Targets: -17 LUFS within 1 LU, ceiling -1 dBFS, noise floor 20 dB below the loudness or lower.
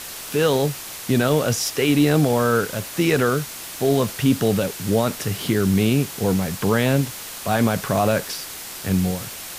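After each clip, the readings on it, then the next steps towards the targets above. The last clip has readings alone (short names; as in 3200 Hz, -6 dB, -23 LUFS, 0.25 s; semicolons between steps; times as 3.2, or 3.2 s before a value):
noise floor -35 dBFS; noise floor target -41 dBFS; loudness -21.0 LUFS; peak -6.5 dBFS; loudness target -17.0 LUFS
-> denoiser 6 dB, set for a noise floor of -35 dBFS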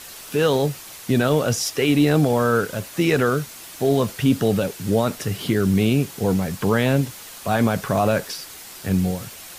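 noise floor -40 dBFS; noise floor target -41 dBFS
-> denoiser 6 dB, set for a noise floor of -40 dBFS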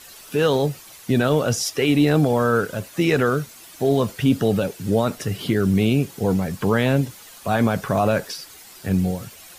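noise floor -44 dBFS; loudness -21.0 LUFS; peak -7.0 dBFS; loudness target -17.0 LUFS
-> gain +4 dB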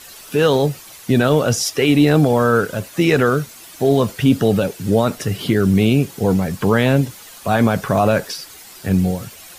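loudness -17.0 LUFS; peak -3.0 dBFS; noise floor -40 dBFS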